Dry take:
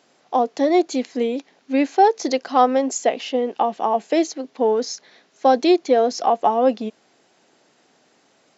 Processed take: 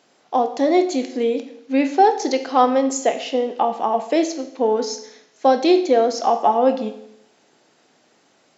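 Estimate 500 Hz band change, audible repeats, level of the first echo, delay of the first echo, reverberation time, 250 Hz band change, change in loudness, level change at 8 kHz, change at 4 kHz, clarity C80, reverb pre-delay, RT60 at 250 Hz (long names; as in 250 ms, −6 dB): +1.0 dB, no echo audible, no echo audible, no echo audible, 0.75 s, +1.0 dB, +0.5 dB, can't be measured, +1.0 dB, 13.5 dB, 19 ms, 0.75 s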